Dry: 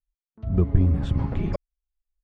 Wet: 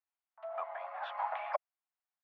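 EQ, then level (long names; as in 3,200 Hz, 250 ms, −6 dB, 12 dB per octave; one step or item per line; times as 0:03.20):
Butterworth high-pass 660 Hz 72 dB per octave
low-pass filter 1,200 Hz 6 dB per octave
high-frequency loss of the air 310 metres
+10.5 dB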